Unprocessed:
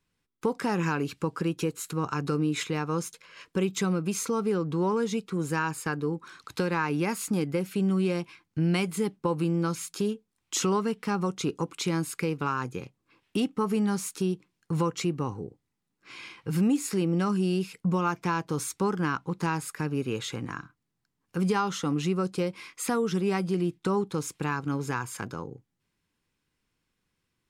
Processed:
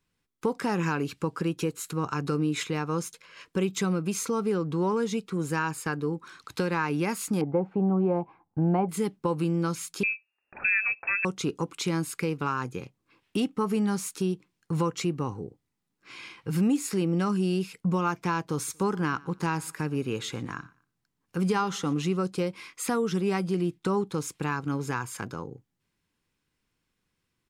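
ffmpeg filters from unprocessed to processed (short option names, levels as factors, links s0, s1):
-filter_complex "[0:a]asettb=1/sr,asplit=3[s0][s1][s2];[s0]atrim=end=7.414[s3];[s1]atrim=start=7.41:end=8.89,asetpts=PTS-STARTPTS,afade=t=in:d=0.004:c=qsin,afade=t=out:st=1.476:d=0.004:c=qsin,lowpass=f=820:t=q:w=5.6[s4];[s2]atrim=start=8.886[s5];[s3][s4]acrossfade=d=0.004:c1=hsin:c2=qsin[s6];[s6][s5]acrossfade=d=0.004:c1=qsin:c2=hsin,asettb=1/sr,asplit=3[s7][s8][s9];[s7]atrim=end=10.034[s10];[s8]atrim=start=10.03:end=11.25,asetpts=PTS-STARTPTS,afade=t=in:d=0.004:c=qsin,afade=t=out:st=1.216:d=0.004:c=qsin,lowpass=f=2400:t=q:w=0.5098,lowpass=f=2400:t=q:w=0.6013,lowpass=f=2400:t=q:w=0.9,lowpass=f=2400:t=q:w=2.563,afreqshift=-2800[s11];[s9]atrim=start=11.246[s12];[s10][s11]acrossfade=d=0.004:c1=hsin:c2=qsin[s13];[s13][s12]acrossfade=d=0.004:c1=qsin:c2=hsin,asplit=3[s14][s15][s16];[s14]afade=t=out:st=18.67:d=0.02[s17];[s15]aecho=1:1:118|236:0.0708|0.0212,afade=t=in:st=18.67:d=0.02,afade=t=out:st=22.16:d=0.02[s18];[s16]afade=t=in:st=22.16:d=0.02[s19];[s17][s18][s19]amix=inputs=3:normalize=0"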